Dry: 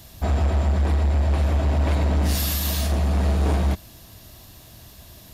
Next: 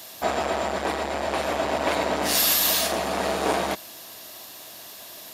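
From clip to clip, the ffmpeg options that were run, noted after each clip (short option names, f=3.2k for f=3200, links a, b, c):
-af "highpass=440,volume=7dB"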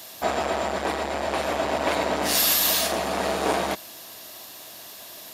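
-af anull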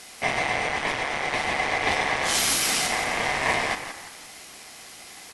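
-filter_complex "[0:a]asplit=5[a][b][c][d][e];[b]adelay=170,afreqshift=-40,volume=-10dB[f];[c]adelay=340,afreqshift=-80,volume=-17.7dB[g];[d]adelay=510,afreqshift=-120,volume=-25.5dB[h];[e]adelay=680,afreqshift=-160,volume=-33.2dB[i];[a][f][g][h][i]amix=inputs=5:normalize=0,aeval=exprs='val(0)*sin(2*PI*1400*n/s)':c=same,volume=2.5dB" -ar 24000 -c:a aac -b:a 96k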